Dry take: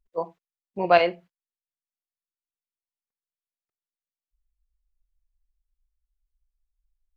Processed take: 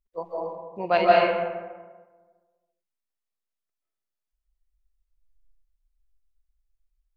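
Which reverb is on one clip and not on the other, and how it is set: algorithmic reverb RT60 1.4 s, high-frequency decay 0.5×, pre-delay 115 ms, DRR -5 dB; trim -5 dB

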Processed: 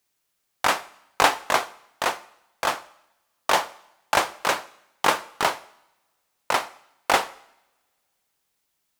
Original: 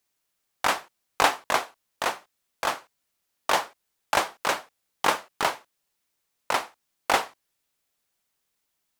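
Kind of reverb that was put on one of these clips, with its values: two-slope reverb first 0.78 s, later 2.3 s, from -25 dB, DRR 17 dB; trim +2.5 dB

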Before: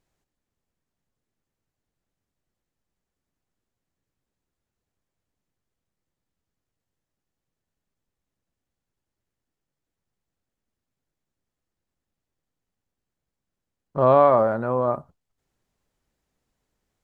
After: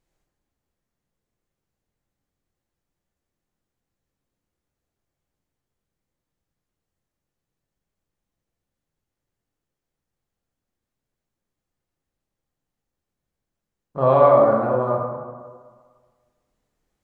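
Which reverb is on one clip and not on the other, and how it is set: plate-style reverb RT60 1.6 s, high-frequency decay 0.5×, DRR -1.5 dB; trim -2.5 dB

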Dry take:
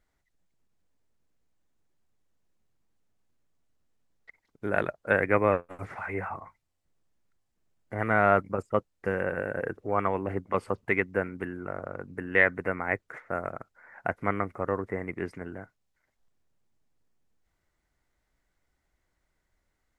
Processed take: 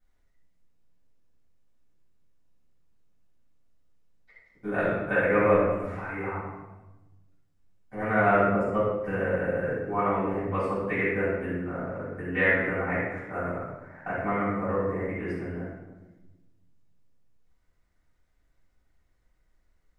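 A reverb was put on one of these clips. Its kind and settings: simulated room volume 530 m³, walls mixed, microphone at 8 m; trim -14 dB

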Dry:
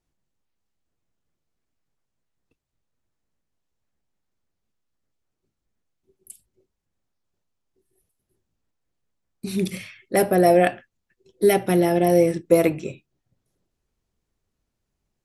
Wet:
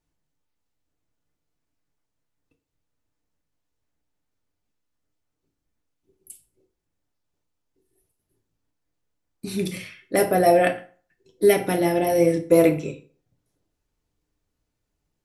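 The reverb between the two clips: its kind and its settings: FDN reverb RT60 0.43 s, low-frequency decay 0.9×, high-frequency decay 0.75×, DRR 4 dB; trim -1 dB

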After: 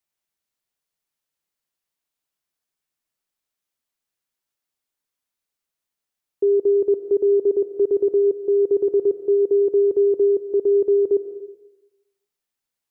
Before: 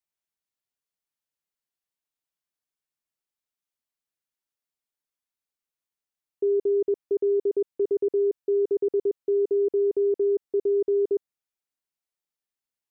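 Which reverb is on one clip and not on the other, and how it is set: algorithmic reverb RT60 1 s, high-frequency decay 1×, pre-delay 85 ms, DRR 11 dB; trim +5.5 dB

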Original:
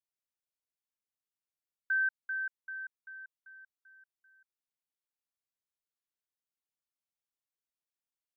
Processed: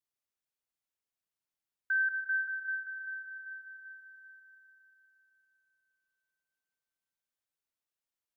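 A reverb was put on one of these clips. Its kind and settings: spring tank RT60 3.8 s, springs 48/54 ms, chirp 35 ms, DRR 4.5 dB

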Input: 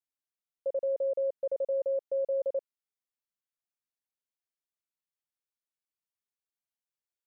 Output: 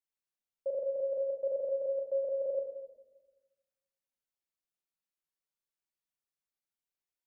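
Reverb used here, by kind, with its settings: simulated room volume 580 m³, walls mixed, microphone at 1.1 m; trim -4 dB

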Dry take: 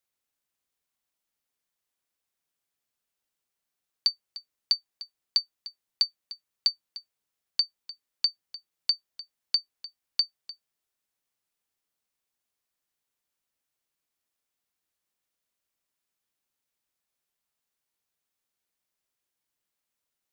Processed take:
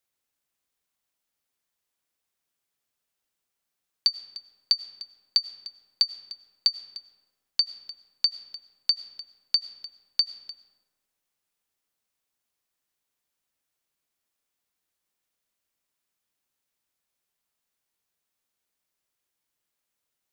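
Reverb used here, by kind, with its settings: algorithmic reverb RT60 1.5 s, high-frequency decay 0.5×, pre-delay 60 ms, DRR 14 dB; trim +2 dB

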